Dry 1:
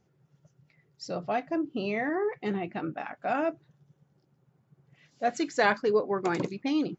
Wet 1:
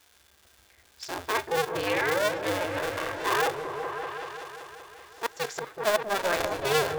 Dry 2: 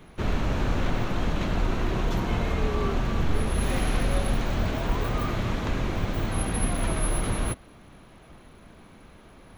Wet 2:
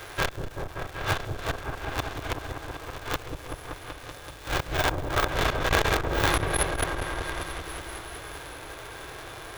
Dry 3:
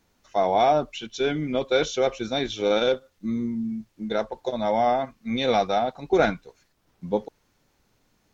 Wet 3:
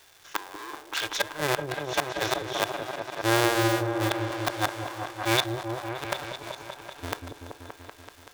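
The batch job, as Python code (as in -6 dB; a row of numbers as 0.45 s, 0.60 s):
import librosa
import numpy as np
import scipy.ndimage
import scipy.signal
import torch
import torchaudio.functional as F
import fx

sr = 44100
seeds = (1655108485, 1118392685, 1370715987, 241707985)

y = fx.cycle_switch(x, sr, every=2, mode='inverted')
y = fx.gate_flip(y, sr, shuts_db=-16.0, range_db=-28)
y = fx.peak_eq(y, sr, hz=210.0, db=-14.0, octaves=0.51)
y = fx.dmg_crackle(y, sr, seeds[0], per_s=560.0, level_db=-50.0)
y = fx.low_shelf(y, sr, hz=390.0, db=-11.5)
y = fx.echo_opening(y, sr, ms=191, hz=400, octaves=1, feedback_pct=70, wet_db=-3)
y = fx.hpss(y, sr, part='percussive', gain_db=-7)
y = fx.small_body(y, sr, hz=(1600.0, 3500.0), ring_ms=45, db=9)
y = fx.transformer_sat(y, sr, knee_hz=380.0)
y = y * 10.0 ** (-30 / 20.0) / np.sqrt(np.mean(np.square(y)))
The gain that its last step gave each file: +8.0 dB, +15.0 dB, +11.0 dB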